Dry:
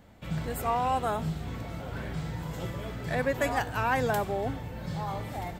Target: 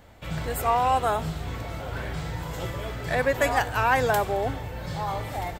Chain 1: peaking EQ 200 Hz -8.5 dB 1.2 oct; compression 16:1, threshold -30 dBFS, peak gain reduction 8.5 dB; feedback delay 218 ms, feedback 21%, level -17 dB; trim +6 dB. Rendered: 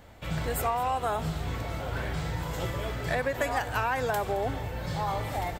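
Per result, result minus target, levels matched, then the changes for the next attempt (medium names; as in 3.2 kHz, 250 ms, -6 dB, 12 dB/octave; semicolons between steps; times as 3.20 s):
compression: peak gain reduction +8.5 dB; echo-to-direct +7 dB
remove: compression 16:1, threshold -30 dBFS, peak gain reduction 8.5 dB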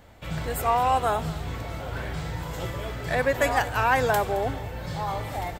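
echo-to-direct +7 dB
change: feedback delay 218 ms, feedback 21%, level -24 dB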